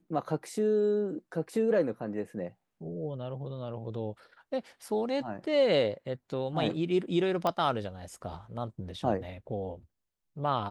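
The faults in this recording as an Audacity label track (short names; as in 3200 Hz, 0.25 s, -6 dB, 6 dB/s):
7.470000	7.470000	pop -17 dBFS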